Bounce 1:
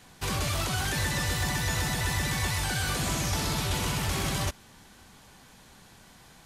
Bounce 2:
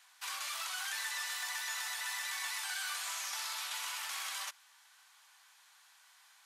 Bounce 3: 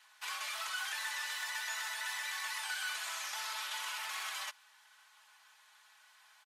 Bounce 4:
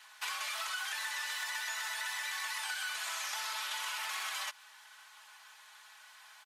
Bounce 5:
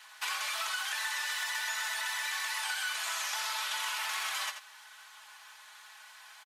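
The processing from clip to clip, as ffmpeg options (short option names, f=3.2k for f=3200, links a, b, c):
-af "highpass=f=980:w=0.5412,highpass=f=980:w=1.3066,volume=-6.5dB"
-af "bass=f=250:g=8,treble=f=4k:g=-6,aecho=1:1:4.7:0.76"
-af "acompressor=threshold=-42dB:ratio=6,volume=7dB"
-af "aecho=1:1:86:0.355,volume=3dB"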